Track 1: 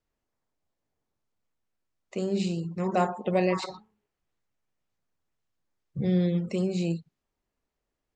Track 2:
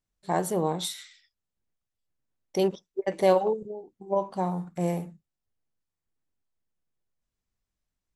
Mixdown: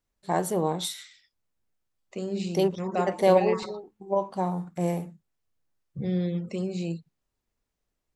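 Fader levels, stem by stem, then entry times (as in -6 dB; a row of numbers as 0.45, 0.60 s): -3.0, +0.5 dB; 0.00, 0.00 s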